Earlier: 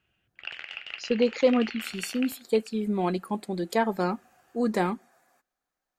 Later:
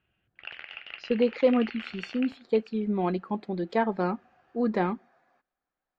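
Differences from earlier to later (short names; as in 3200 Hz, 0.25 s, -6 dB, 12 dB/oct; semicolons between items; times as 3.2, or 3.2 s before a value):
speech: add LPF 6700 Hz 12 dB/oct; master: add air absorption 230 m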